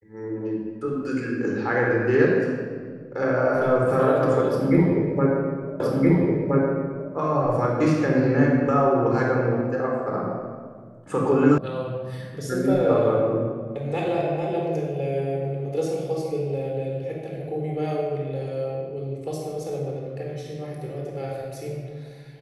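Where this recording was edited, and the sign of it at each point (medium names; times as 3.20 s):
5.80 s: repeat of the last 1.32 s
11.58 s: sound stops dead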